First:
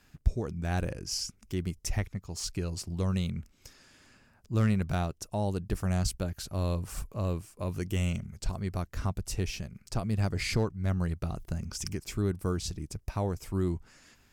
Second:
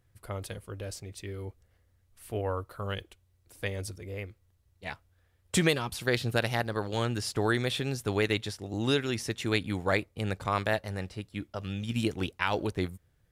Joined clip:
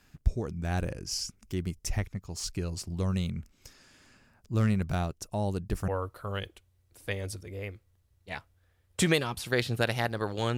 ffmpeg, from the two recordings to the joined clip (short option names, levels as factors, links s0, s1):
-filter_complex "[0:a]apad=whole_dur=10.57,atrim=end=10.57,atrim=end=5.882[s0];[1:a]atrim=start=2.428:end=7.12[s1];[s0][s1]acrossfade=d=0.004:c1=hsin:c2=hsin"